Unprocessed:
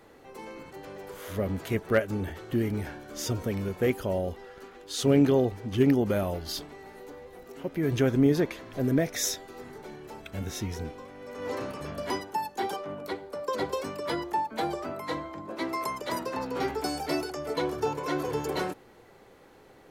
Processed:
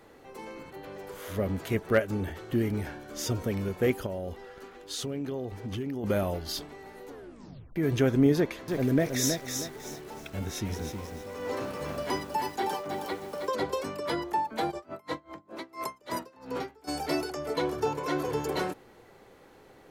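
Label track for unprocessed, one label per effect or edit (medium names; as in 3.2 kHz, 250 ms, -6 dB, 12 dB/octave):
0.700000	0.920000	time-frequency box 4.5–10 kHz -6 dB
4.060000	6.040000	compression, threshold -31 dBFS
7.090000	7.090000	tape stop 0.67 s
8.360000	13.520000	bit-crushed delay 318 ms, feedback 35%, word length 8-bit, level -5 dB
14.700000	16.870000	logarithmic tremolo 6.5 Hz -> 1.9 Hz, depth 25 dB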